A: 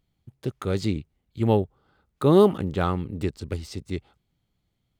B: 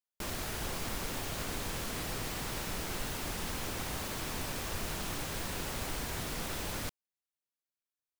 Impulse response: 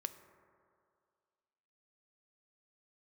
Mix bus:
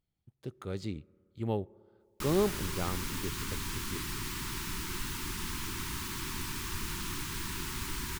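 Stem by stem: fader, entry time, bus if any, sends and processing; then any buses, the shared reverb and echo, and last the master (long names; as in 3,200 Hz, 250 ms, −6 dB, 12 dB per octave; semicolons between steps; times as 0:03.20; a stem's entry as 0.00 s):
−13.5 dB, 0.00 s, send −10.5 dB, no processing
+1.0 dB, 2.00 s, no send, elliptic band-stop filter 380–930 Hz, stop band 40 dB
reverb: on, RT60 2.2 s, pre-delay 3 ms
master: no processing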